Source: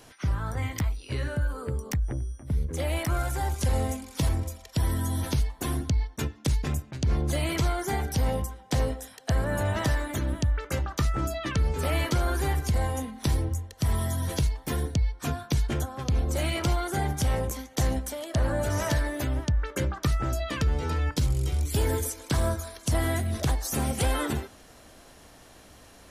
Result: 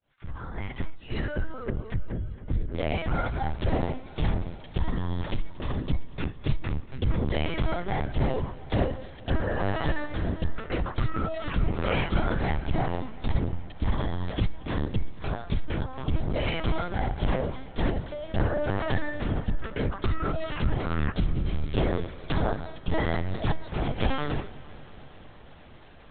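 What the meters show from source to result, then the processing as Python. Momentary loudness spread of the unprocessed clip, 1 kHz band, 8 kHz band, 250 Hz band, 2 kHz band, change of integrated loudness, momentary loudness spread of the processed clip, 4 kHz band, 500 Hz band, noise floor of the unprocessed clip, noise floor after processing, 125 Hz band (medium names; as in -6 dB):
5 LU, 0.0 dB, under -40 dB, +0.5 dB, 0.0 dB, -2.0 dB, 7 LU, -3.0 dB, +0.5 dB, -52 dBFS, -46 dBFS, -2.5 dB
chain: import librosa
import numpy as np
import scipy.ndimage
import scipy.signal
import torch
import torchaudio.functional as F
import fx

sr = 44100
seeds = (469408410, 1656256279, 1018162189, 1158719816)

y = fx.fade_in_head(x, sr, length_s=0.86)
y = fx.lpc_vocoder(y, sr, seeds[0], excitation='pitch_kept', order=10)
y = fx.echo_warbled(y, sr, ms=230, feedback_pct=79, rate_hz=2.8, cents=61, wet_db=-21.0)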